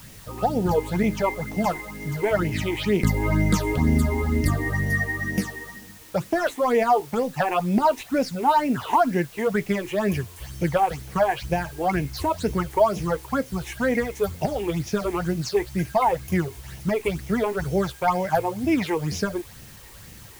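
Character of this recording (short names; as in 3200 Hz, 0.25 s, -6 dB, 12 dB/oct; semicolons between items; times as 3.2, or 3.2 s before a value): phasing stages 8, 2.1 Hz, lowest notch 170–1300 Hz; a quantiser's noise floor 8-bit, dither triangular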